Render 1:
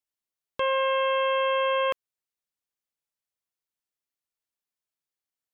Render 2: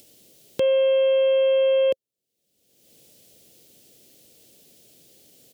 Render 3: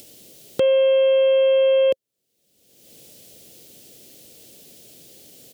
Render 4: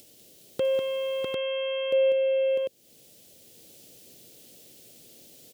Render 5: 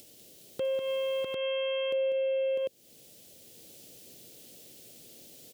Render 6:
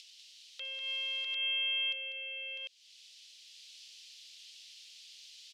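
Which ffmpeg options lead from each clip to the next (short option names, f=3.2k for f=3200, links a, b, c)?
-af "firequalizer=gain_entry='entry(530,0);entry(1000,-27);entry(3000,-9)':delay=0.05:min_phase=1,acompressor=mode=upward:threshold=-34dB:ratio=2.5,highpass=110,volume=8.5dB"
-filter_complex "[0:a]asplit=2[a][b];[b]acompressor=threshold=-30dB:ratio=6,volume=2.5dB[c];[a][c]amix=inputs=2:normalize=0,aeval=exprs='0.316*(abs(mod(val(0)/0.316+3,4)-2)-1)':c=same"
-af "aecho=1:1:196|650|748:0.501|0.668|0.668,volume=-8dB"
-af "alimiter=level_in=0.5dB:limit=-24dB:level=0:latency=1:release=141,volume=-0.5dB"
-af "asuperpass=centerf=3600:order=4:qfactor=1.2,volume=7dB"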